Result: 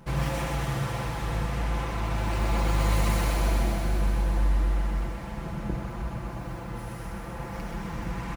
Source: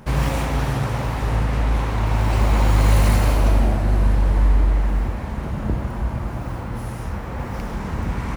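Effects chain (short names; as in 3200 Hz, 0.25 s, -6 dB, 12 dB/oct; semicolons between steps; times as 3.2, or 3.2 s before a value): comb 5.9 ms; thinning echo 0.127 s, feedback 81%, high-pass 990 Hz, level -4.5 dB; gain -8.5 dB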